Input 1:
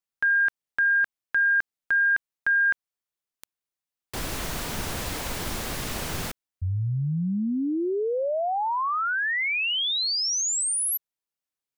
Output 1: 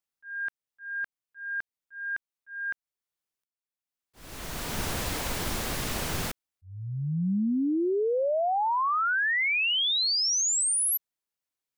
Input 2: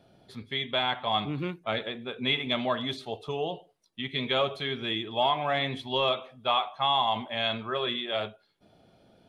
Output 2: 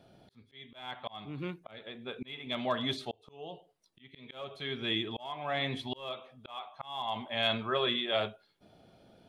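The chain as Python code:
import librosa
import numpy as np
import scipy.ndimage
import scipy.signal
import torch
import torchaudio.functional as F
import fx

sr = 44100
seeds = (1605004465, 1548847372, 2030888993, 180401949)

y = np.clip(x, -10.0 ** (-16.0 / 20.0), 10.0 ** (-16.0 / 20.0))
y = fx.auto_swell(y, sr, attack_ms=696.0)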